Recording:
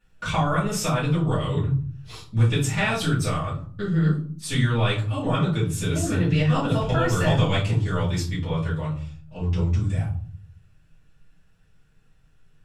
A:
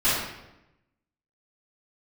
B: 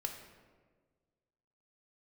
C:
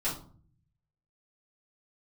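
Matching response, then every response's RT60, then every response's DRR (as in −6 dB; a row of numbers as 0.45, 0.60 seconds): C; 0.90, 1.5, 0.45 seconds; −16.5, 3.0, −11.0 decibels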